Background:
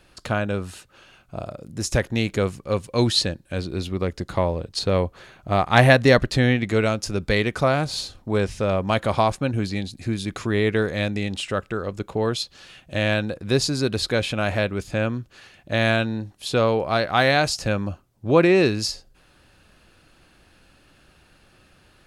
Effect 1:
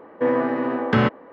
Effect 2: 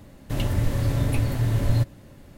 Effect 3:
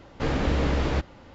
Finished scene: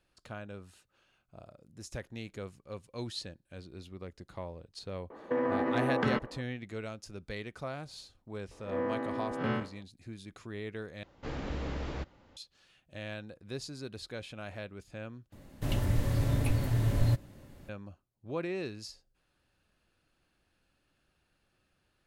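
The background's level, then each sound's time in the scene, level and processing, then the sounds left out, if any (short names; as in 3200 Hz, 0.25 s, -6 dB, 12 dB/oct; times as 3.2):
background -19.5 dB
5.1 add 1 -4.5 dB + compressor, threshold -21 dBFS
8.51 add 1 -11.5 dB + time blur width 0.12 s
11.03 replace with 3 -12.5 dB
15.32 replace with 2 -5.5 dB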